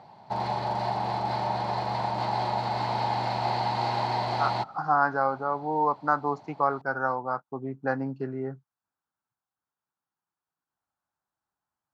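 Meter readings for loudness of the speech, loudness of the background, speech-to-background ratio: -28.5 LUFS, -29.0 LUFS, 0.5 dB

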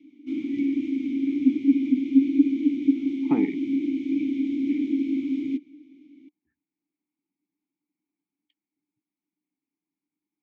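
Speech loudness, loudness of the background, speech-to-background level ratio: -28.0 LUFS, -24.5 LUFS, -3.5 dB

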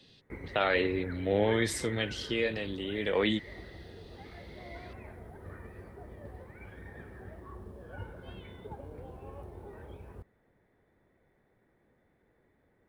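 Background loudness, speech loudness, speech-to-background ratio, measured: -46.5 LUFS, -30.5 LUFS, 16.0 dB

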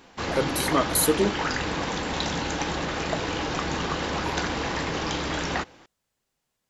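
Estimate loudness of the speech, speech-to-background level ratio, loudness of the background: -25.0 LUFS, 3.0 dB, -28.0 LUFS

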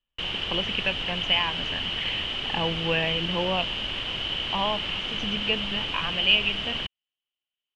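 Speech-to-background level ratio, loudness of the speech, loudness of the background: 1.0 dB, -27.5 LUFS, -28.5 LUFS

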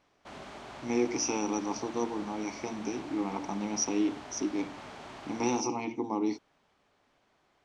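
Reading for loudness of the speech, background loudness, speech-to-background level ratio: -33.0 LUFS, -45.5 LUFS, 12.5 dB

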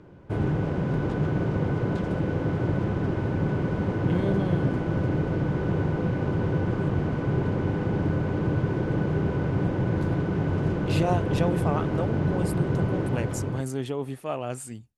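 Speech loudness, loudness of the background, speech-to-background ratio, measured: -31.5 LUFS, -26.5 LUFS, -5.0 dB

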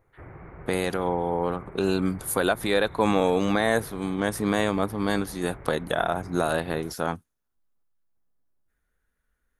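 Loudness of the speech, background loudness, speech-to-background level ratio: -26.0 LUFS, -45.0 LUFS, 19.0 dB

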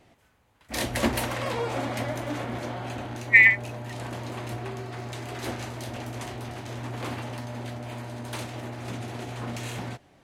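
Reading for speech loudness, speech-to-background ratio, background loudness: -16.0 LUFS, 17.5 dB, -33.5 LUFS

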